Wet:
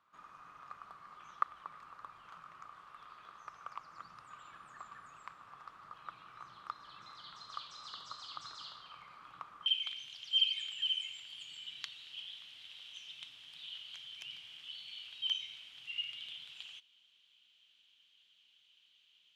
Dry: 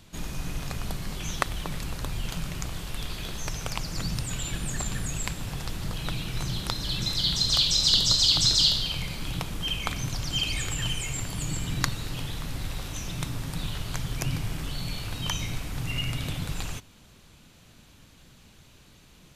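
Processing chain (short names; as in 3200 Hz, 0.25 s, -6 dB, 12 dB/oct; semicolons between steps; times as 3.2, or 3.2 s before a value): band-pass 1200 Hz, Q 9.6, from 9.66 s 3100 Hz; gain +1 dB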